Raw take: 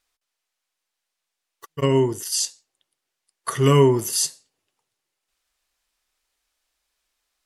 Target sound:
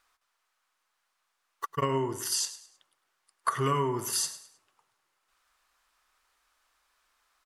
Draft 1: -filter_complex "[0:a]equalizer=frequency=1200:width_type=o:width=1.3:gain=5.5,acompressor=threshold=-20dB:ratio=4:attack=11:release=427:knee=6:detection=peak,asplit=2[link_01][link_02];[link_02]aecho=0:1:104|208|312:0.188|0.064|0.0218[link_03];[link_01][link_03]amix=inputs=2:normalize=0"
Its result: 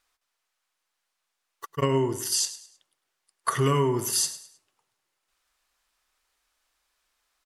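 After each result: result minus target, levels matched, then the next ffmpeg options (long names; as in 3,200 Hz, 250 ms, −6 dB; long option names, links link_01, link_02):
downward compressor: peak gain reduction −7 dB; 1,000 Hz band −4.0 dB
-filter_complex "[0:a]equalizer=frequency=1200:width_type=o:width=1.3:gain=5.5,acompressor=threshold=-27dB:ratio=4:attack=11:release=427:knee=6:detection=peak,asplit=2[link_01][link_02];[link_02]aecho=0:1:104|208|312:0.188|0.064|0.0218[link_03];[link_01][link_03]amix=inputs=2:normalize=0"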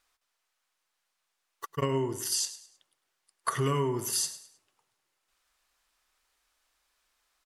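1,000 Hz band −3.5 dB
-filter_complex "[0:a]equalizer=frequency=1200:width_type=o:width=1.3:gain=13,acompressor=threshold=-27dB:ratio=4:attack=11:release=427:knee=6:detection=peak,asplit=2[link_01][link_02];[link_02]aecho=0:1:104|208|312:0.188|0.064|0.0218[link_03];[link_01][link_03]amix=inputs=2:normalize=0"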